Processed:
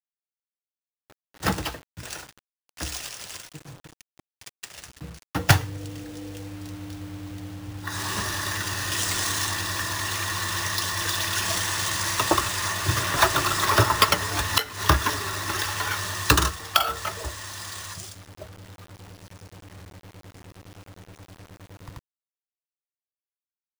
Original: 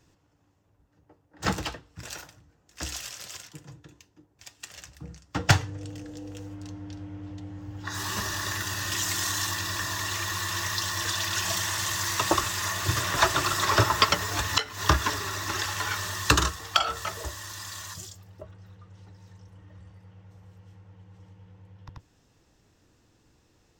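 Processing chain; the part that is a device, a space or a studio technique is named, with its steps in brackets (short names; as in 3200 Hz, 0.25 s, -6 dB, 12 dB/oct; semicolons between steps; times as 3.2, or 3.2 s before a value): early 8-bit sampler (sample-rate reducer 16000 Hz, jitter 0%; bit-crush 8-bit); gain +2.5 dB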